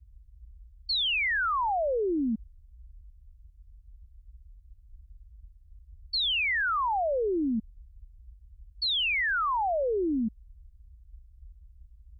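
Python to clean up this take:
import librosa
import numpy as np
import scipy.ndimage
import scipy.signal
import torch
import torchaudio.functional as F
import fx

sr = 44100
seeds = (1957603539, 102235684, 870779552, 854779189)

y = fx.noise_reduce(x, sr, print_start_s=3.36, print_end_s=3.86, reduce_db=22.0)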